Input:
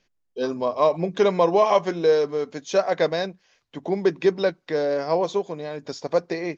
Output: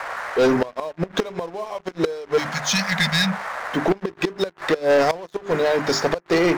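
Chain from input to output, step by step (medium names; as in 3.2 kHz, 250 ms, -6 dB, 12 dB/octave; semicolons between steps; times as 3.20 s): spectral selection erased 2.38–3.66 s, 240–1600 Hz; hum notches 50/100/150/200/250/300/350/400 Hz; in parallel at -5.5 dB: overload inside the chain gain 22 dB; on the sum: gate with hold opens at -38 dBFS; band noise 540–1900 Hz -41 dBFS; inverted gate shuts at -13 dBFS, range -25 dB; waveshaping leveller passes 3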